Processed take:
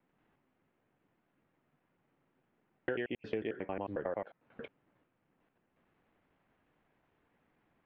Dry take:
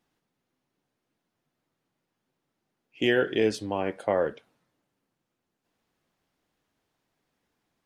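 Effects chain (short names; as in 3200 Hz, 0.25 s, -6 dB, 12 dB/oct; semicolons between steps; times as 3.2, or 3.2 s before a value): slices in reverse order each 90 ms, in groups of 4; LPF 2600 Hz 24 dB/oct; compressor 5:1, threshold -40 dBFS, peak gain reduction 18.5 dB; gain +4.5 dB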